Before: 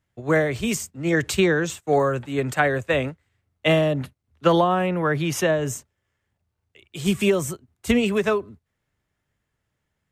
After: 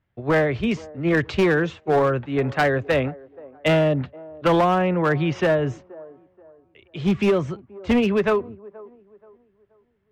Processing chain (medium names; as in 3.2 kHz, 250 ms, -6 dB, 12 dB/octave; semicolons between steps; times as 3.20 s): Gaussian low-pass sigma 2.4 samples; overload inside the chain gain 16 dB; feedback echo behind a band-pass 478 ms, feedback 33%, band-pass 530 Hz, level -20 dB; trim +2.5 dB